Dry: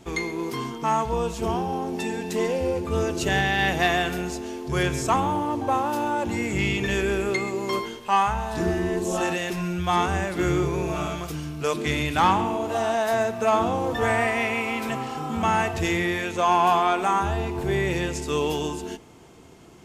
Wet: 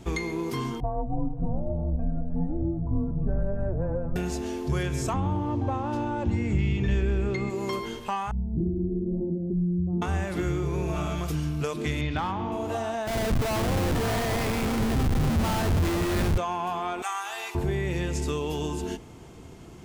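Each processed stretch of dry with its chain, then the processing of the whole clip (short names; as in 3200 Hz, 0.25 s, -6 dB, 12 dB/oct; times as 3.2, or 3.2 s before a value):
0.8–4.16 inverse Chebyshev low-pass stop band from 4300 Hz, stop band 70 dB + flange 1 Hz, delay 3.1 ms, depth 3.3 ms, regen +42% + frequency shift -190 Hz
5.13–7.5 LPF 5600 Hz + low shelf 220 Hz +11.5 dB
8.31–10.02 inverse Chebyshev low-pass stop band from 2000 Hz, stop band 80 dB + comb 5.6 ms, depth 48%
12.01–12.52 LPF 5000 Hz 24 dB/oct + notch 2700 Hz, Q 18 + hard clip -11.5 dBFS
13.07–16.38 brick-wall FIR low-pass 8300 Hz + Schmitt trigger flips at -27 dBFS
17.02–17.55 HPF 1000 Hz + tilt +2.5 dB/oct + comb 2.6 ms, depth 36%
whole clip: compressor, threshold -28 dBFS; low shelf 160 Hz +10.5 dB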